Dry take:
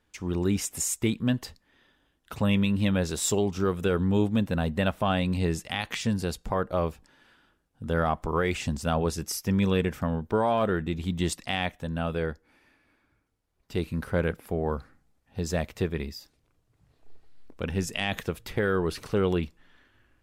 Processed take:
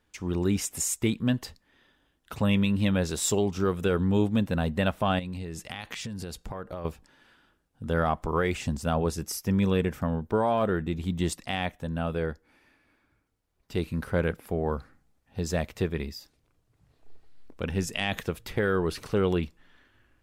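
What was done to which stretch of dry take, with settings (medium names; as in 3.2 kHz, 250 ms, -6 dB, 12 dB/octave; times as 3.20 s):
5.19–6.85 s: compression 10:1, threshold -32 dBFS
8.47–12.30 s: peaking EQ 3.5 kHz -3 dB 2.5 oct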